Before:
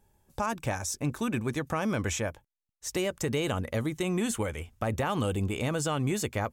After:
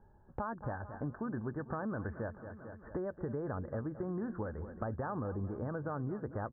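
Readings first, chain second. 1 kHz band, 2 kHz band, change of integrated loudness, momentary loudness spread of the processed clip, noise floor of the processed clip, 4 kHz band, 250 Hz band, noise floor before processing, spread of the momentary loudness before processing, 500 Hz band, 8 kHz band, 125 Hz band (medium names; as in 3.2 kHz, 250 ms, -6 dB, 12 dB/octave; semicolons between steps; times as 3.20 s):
-8.0 dB, -12.0 dB, -9.0 dB, 5 LU, -61 dBFS, under -40 dB, -8.0 dB, -81 dBFS, 5 LU, -8.0 dB, under -40 dB, -8.0 dB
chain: steep low-pass 1.7 kHz 96 dB/octave; feedback delay 223 ms, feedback 52%, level -16 dB; compression 2.5:1, threshold -46 dBFS, peak gain reduction 14 dB; trim +4.5 dB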